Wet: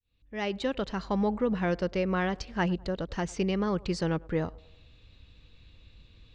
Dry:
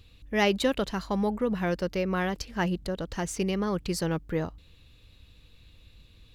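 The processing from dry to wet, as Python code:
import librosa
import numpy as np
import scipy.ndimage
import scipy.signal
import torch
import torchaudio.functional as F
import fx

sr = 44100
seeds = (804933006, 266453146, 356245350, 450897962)

y = fx.fade_in_head(x, sr, length_s=1.14)
y = scipy.signal.sosfilt(scipy.signal.bessel(8, 4800.0, 'lowpass', norm='mag', fs=sr, output='sos'), y)
y = fx.echo_banded(y, sr, ms=102, feedback_pct=53, hz=630.0, wet_db=-22.0)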